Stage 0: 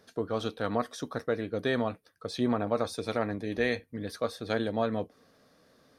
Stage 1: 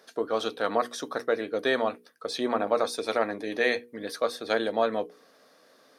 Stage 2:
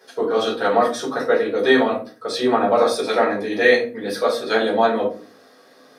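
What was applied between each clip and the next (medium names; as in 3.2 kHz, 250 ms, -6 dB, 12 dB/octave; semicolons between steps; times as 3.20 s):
high-pass 350 Hz 12 dB/octave; hum notches 60/120/180/240/300/360/420/480 Hz; trim +5.5 dB
simulated room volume 200 m³, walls furnished, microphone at 4.6 m; trim -1 dB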